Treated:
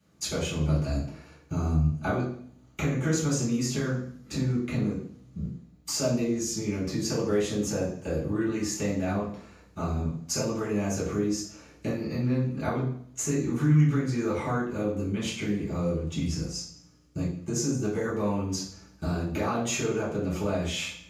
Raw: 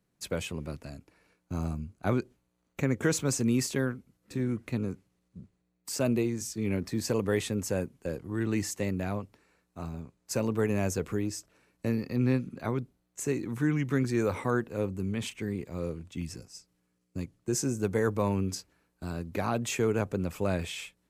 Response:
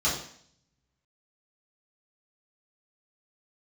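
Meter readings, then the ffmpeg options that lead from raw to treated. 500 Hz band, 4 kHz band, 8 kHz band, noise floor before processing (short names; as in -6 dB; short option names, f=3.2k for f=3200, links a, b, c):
+1.0 dB, +5.0 dB, +4.0 dB, -76 dBFS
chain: -filter_complex "[0:a]acompressor=threshold=-40dB:ratio=4[a];[1:a]atrim=start_sample=2205[b];[a][b]afir=irnorm=-1:irlink=0,volume=1.5dB"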